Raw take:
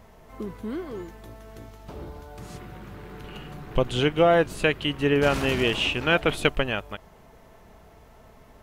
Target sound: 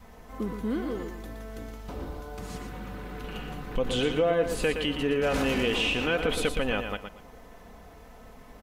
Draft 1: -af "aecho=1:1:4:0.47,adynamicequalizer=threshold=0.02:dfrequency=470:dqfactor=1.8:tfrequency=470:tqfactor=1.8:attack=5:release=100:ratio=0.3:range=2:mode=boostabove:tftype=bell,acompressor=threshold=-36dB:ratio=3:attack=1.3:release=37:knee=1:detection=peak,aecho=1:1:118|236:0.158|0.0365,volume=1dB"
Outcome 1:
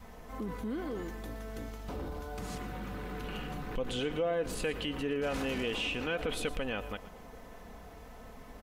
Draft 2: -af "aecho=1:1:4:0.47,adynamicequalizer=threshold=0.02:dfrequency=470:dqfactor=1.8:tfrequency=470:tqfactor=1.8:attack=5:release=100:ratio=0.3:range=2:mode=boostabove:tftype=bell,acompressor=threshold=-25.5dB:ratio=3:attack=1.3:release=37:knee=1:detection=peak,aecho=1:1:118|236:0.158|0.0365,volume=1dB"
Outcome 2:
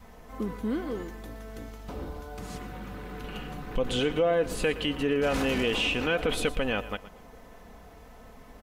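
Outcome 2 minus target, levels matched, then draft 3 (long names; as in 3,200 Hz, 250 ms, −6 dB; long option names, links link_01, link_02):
echo-to-direct −8.5 dB
-af "aecho=1:1:4:0.47,adynamicequalizer=threshold=0.02:dfrequency=470:dqfactor=1.8:tfrequency=470:tqfactor=1.8:attack=5:release=100:ratio=0.3:range=2:mode=boostabove:tftype=bell,acompressor=threshold=-25.5dB:ratio=3:attack=1.3:release=37:knee=1:detection=peak,aecho=1:1:118|236|354:0.422|0.097|0.0223,volume=1dB"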